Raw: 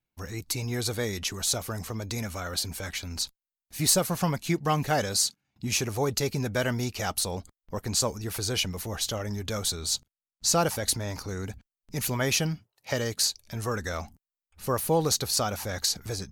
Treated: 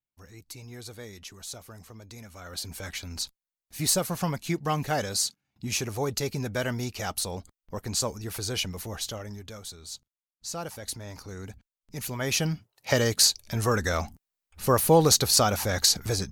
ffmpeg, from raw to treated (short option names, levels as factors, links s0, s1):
-af "volume=5.96,afade=t=in:st=2.31:d=0.54:silence=0.298538,afade=t=out:st=8.87:d=0.71:silence=0.316228,afade=t=in:st=10.55:d=0.94:silence=0.446684,afade=t=in:st=12.16:d=0.74:silence=0.298538"